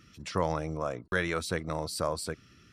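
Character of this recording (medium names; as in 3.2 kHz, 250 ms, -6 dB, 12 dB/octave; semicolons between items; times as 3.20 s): noise floor -59 dBFS; spectral tilt -4.5 dB/octave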